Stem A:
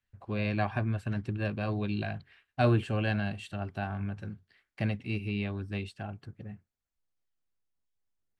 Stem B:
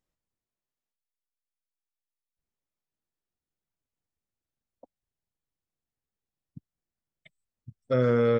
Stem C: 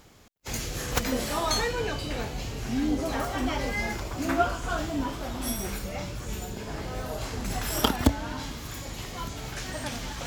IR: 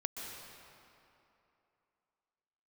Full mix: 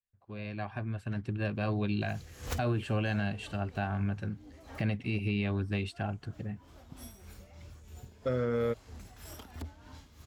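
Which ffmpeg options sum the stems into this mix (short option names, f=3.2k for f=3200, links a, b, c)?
-filter_complex "[0:a]dynaudnorm=f=140:g=17:m=15dB,volume=-10dB,asplit=2[a][b];[1:a]adelay=350,volume=-4dB[c];[2:a]equalizer=f=80:w=4.1:g=14.5,asoftclip=type=tanh:threshold=-18.5dB,tremolo=f=3.1:d=0.57,adelay=1550,volume=-7.5dB,afade=t=out:st=3.73:d=0.49:silence=0.334965[d];[b]apad=whole_len=521059[e];[d][e]sidechaincompress=threshold=-46dB:ratio=12:attack=16:release=319[f];[a][c]amix=inputs=2:normalize=0,agate=range=-6dB:threshold=-51dB:ratio=16:detection=peak,alimiter=limit=-21.5dB:level=0:latency=1:release=111,volume=0dB[g];[f][g]amix=inputs=2:normalize=0"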